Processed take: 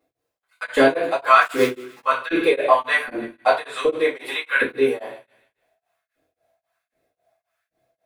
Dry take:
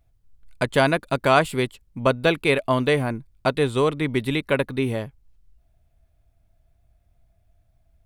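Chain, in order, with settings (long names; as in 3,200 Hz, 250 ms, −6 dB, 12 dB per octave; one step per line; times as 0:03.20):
0:03.89–0:04.48: bass and treble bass −15 dB, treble +1 dB
in parallel at +2 dB: brickwall limiter −14 dBFS, peak gain reduction 9.5 dB
0:01.41–0:02.00: on the sum: log-companded quantiser 4 bits
auto-filter high-pass saw up 1.3 Hz 310–1,800 Hz
on a send: delay with a high-pass on its return 151 ms, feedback 42%, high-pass 1,500 Hz, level −16 dB
on the sum: rectangular room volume 39 cubic metres, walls mixed, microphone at 2.1 metres
tremolo along a rectified sine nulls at 3.7 Hz
level −14.5 dB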